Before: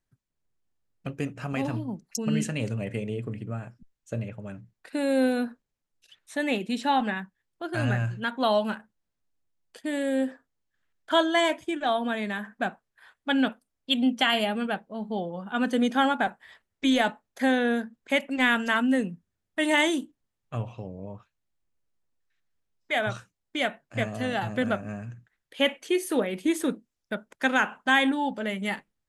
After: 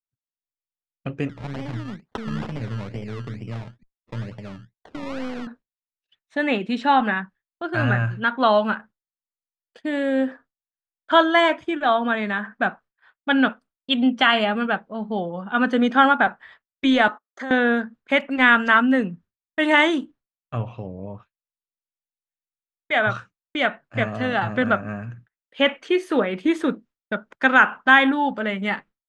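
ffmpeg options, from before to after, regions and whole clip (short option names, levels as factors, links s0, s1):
-filter_complex "[0:a]asettb=1/sr,asplit=3[s0][s1][s2];[s0]atrim=end=1.294[s3];[s1]atrim=start=1.29:end=5.47,asetpts=PTS-STARTPTS,afade=t=in:d=0.004:c=qsin,afade=t=out:st=4.176:d=0.004:c=qsin,aeval=exprs='if(lt(val(0),0),0.708*val(0),val(0))':c=same,acrossover=split=150|3000[s4][s5][s6];[s5]acompressor=threshold=0.0126:ratio=3:attack=3.2:release=140:knee=2.83:detection=peak[s7];[s4][s7][s6]amix=inputs=3:normalize=0,acrusher=samples=23:mix=1:aa=0.000001:lfo=1:lforange=13.8:lforate=2.2[s8];[s2]atrim=start=5.466[s9];[s3][s8]acrossfade=d=0.004:c1=hsin:c2=qsin[s10];[s10][s9]acrossfade=d=0.004:c1=qsin:c2=hsin,asettb=1/sr,asplit=3[s11][s12][s13];[s11]atrim=end=17.084[s14];[s12]atrim=start=17.08:end=17.51,asetpts=PTS-STARTPTS,afade=t=in:d=0.004:c=qsin,afade=t=out:st=0.426:d=0.004:c=qsin,agate=range=0.0891:threshold=0.00224:ratio=16:release=100:detection=peak,highpass=f=250:w=0.5412,highpass=f=250:w=1.3066,equalizer=f=370:t=q:w=4:g=5,equalizer=f=1200:t=q:w=4:g=9,equalizer=f=2500:t=q:w=4:g=-8,equalizer=f=6500:t=q:w=4:g=10,lowpass=f=10000:w=0.5412,lowpass=f=10000:w=1.3066,acompressor=threshold=0.0158:ratio=3:attack=3.2:release=140:knee=1:detection=peak[s15];[s13]atrim=start=17.506[s16];[s14][s15]acrossfade=d=0.004:c1=hsin:c2=qsin[s17];[s17][s16]acrossfade=d=0.004:c1=qsin:c2=hsin,lowpass=3800,agate=range=0.0224:threshold=0.00501:ratio=3:detection=peak,adynamicequalizer=threshold=0.00794:dfrequency=1300:dqfactor=1.9:tfrequency=1300:tqfactor=1.9:attack=5:release=100:ratio=0.375:range=4:mode=boostabove:tftype=bell,volume=1.68"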